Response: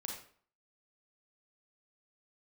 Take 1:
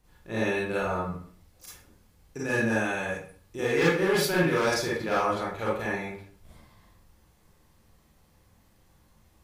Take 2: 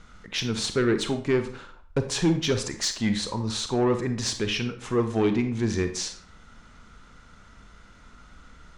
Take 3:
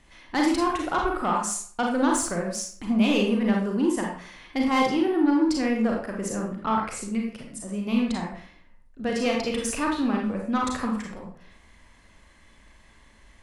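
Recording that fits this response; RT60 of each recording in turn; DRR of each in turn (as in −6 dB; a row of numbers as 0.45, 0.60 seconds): 3; 0.50, 0.50, 0.50 seconds; −7.5, 8.0, −0.5 decibels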